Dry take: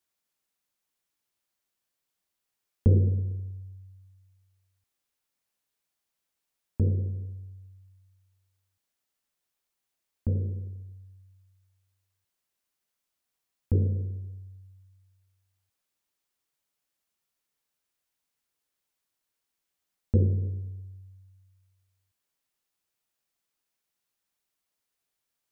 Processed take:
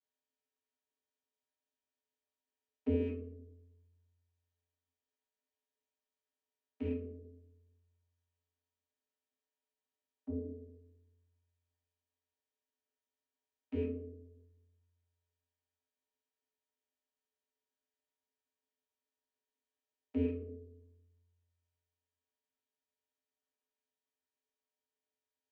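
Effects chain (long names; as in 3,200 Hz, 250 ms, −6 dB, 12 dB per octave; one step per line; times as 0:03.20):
loose part that buzzes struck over −20 dBFS, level −29 dBFS
channel vocoder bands 32, square 86.5 Hz
convolution reverb RT60 0.45 s, pre-delay 6 ms, DRR −1.5 dB
level −7 dB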